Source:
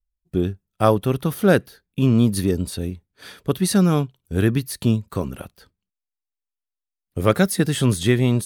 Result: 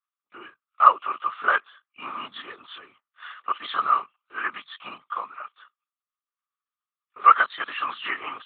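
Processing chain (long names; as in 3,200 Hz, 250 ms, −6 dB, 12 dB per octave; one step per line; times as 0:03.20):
hearing-aid frequency compression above 2,000 Hz 1.5 to 1
linear-prediction vocoder at 8 kHz whisper
high-pass with resonance 1,200 Hz, resonance Q 9.8
level −4 dB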